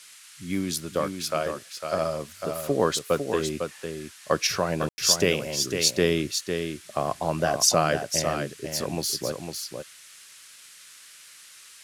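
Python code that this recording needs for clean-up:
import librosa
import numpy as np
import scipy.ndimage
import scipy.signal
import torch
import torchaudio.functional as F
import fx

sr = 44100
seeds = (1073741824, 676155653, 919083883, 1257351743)

y = fx.fix_ambience(x, sr, seeds[0], print_start_s=10.24, print_end_s=10.74, start_s=4.89, end_s=4.98)
y = fx.noise_reduce(y, sr, print_start_s=10.24, print_end_s=10.74, reduce_db=22.0)
y = fx.fix_echo_inverse(y, sr, delay_ms=503, level_db=-6.5)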